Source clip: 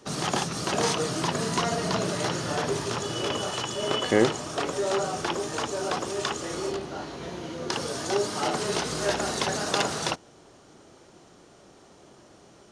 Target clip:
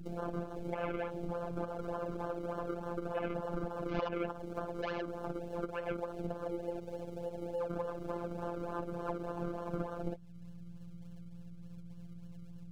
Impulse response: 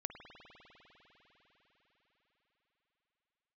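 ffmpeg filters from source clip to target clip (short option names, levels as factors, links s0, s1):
-filter_complex "[0:a]apsyclip=8.91,flanger=delay=8.2:depth=1.8:regen=-6:speed=0.21:shape=triangular,asplit=3[s0][s1][s2];[s0]bandpass=f=530:t=q:w=8,volume=1[s3];[s1]bandpass=f=1840:t=q:w=8,volume=0.501[s4];[s2]bandpass=f=2480:t=q:w=8,volume=0.355[s5];[s3][s4][s5]amix=inputs=3:normalize=0,highshelf=f=2500:t=q:w=3:g=10,acrusher=samples=35:mix=1:aa=0.000001:lfo=1:lforange=35:lforate=3.4,equalizer=f=6000:w=0.39:g=6,aeval=exprs='val(0)+0.0224*(sin(2*PI*60*n/s)+sin(2*PI*2*60*n/s)/2+sin(2*PI*3*60*n/s)/3+sin(2*PI*4*60*n/s)/4+sin(2*PI*5*60*n/s)/5)':c=same,afwtdn=0.0708,afftfilt=real='hypot(re,im)*cos(PI*b)':imag='0':win_size=1024:overlap=0.75,acrossover=split=2700[s6][s7];[s7]acompressor=threshold=0.00282:ratio=4:attack=1:release=60[s8];[s6][s8]amix=inputs=2:normalize=0,bandreject=f=1900:w=11,acompressor=threshold=0.0178:ratio=2,volume=0.596"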